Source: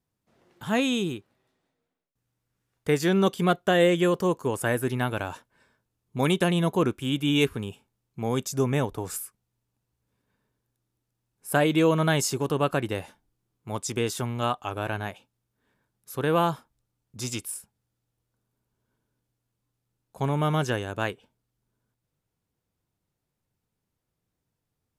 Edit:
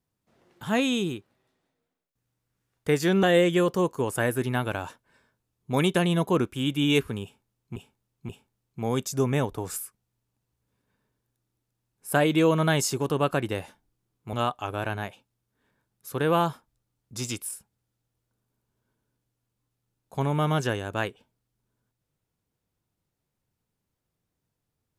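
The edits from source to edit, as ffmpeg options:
-filter_complex "[0:a]asplit=5[a][b][c][d][e];[a]atrim=end=3.232[f];[b]atrim=start=3.688:end=8.222[g];[c]atrim=start=7.688:end=8.222[h];[d]atrim=start=7.688:end=13.732[i];[e]atrim=start=14.358[j];[f][g]acrossfade=d=0.004:c1=hsin:c2=hsin[k];[k][h]acrossfade=d=0.004:c1=hsin:c2=hsin[l];[l][i]acrossfade=d=0.004:c1=hsin:c2=hsin[m];[m][j]acrossfade=d=0.004:c1=hsin:c2=hsin"

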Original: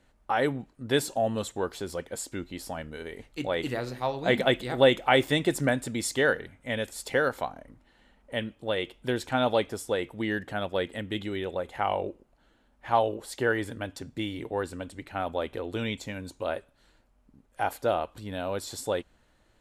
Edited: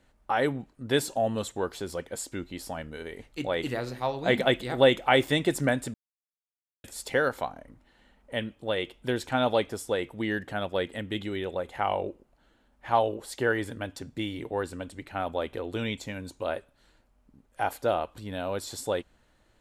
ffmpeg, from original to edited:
-filter_complex "[0:a]asplit=3[a][b][c];[a]atrim=end=5.94,asetpts=PTS-STARTPTS,afade=t=out:st=5.936:d=0.004:c=hsin[d];[b]atrim=start=5.94:end=6.84,asetpts=PTS-STARTPTS,volume=0[e];[c]atrim=start=6.84,asetpts=PTS-STARTPTS,afade=t=in:d=0.004:c=hsin[f];[d][e][f]concat=n=3:v=0:a=1"

